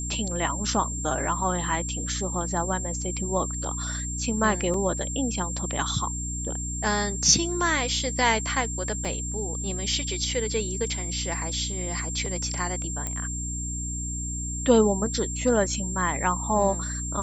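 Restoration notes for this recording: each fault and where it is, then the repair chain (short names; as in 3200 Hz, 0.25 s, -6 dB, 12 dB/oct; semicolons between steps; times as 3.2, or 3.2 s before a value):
hum 60 Hz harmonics 5 -33 dBFS
tone 7400 Hz -32 dBFS
4.74 gap 2.2 ms
9.05 gap 3.6 ms
13.07 pop -16 dBFS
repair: de-click; de-hum 60 Hz, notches 5; notch 7400 Hz, Q 30; interpolate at 4.74, 2.2 ms; interpolate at 9.05, 3.6 ms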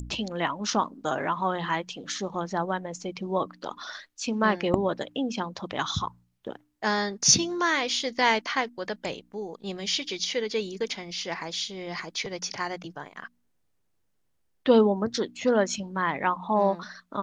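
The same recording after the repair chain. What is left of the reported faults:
none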